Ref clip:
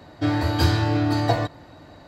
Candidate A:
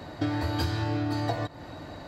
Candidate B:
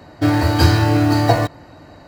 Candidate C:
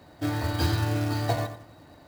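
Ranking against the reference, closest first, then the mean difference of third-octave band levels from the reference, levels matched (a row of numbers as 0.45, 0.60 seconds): B, C, A; 2.0, 3.0, 4.5 decibels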